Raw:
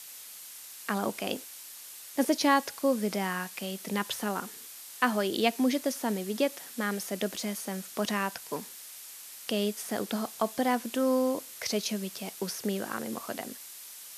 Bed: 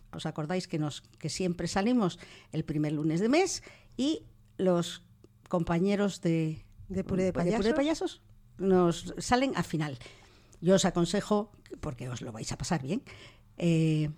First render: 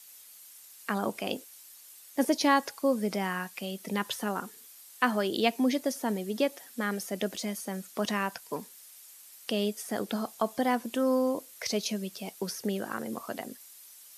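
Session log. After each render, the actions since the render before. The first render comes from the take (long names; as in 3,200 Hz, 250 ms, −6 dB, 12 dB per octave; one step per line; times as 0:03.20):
broadband denoise 9 dB, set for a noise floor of −46 dBFS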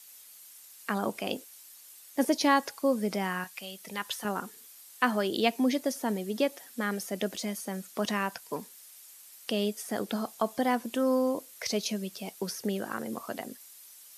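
0:03.44–0:04.25: parametric band 250 Hz −11 dB 2.6 octaves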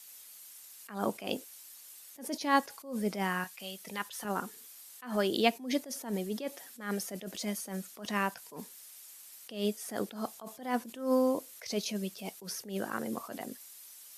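level that may rise only so fast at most 130 dB per second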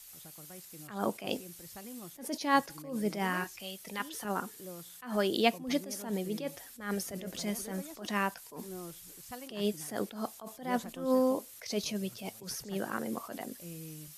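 mix in bed −20 dB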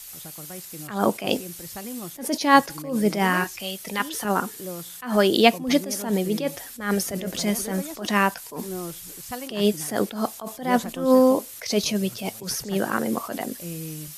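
level +11 dB
brickwall limiter −1 dBFS, peak gain reduction 1 dB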